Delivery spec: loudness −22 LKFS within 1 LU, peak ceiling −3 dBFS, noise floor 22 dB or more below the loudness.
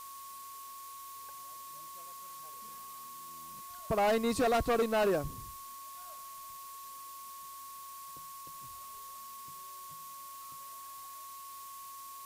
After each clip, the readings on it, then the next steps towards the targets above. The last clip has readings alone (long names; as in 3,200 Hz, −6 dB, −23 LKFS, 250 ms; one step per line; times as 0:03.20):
interfering tone 1,100 Hz; level of the tone −46 dBFS; background noise floor −47 dBFS; target noise floor −60 dBFS; integrated loudness −38.0 LKFS; sample peak −22.5 dBFS; target loudness −22.0 LKFS
→ notch filter 1,100 Hz, Q 30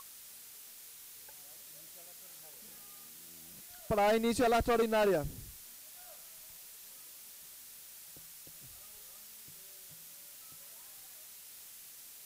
interfering tone none found; background noise floor −52 dBFS; target noise floor −53 dBFS
→ noise reduction from a noise print 6 dB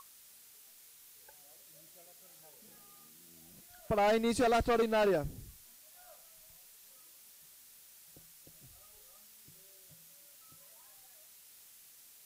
background noise floor −58 dBFS; integrated loudness −30.0 LKFS; sample peak −23.0 dBFS; target loudness −22.0 LKFS
→ level +8 dB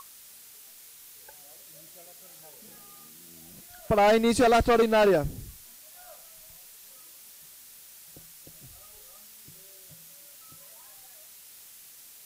integrated loudness −22.0 LKFS; sample peak −15.0 dBFS; background noise floor −50 dBFS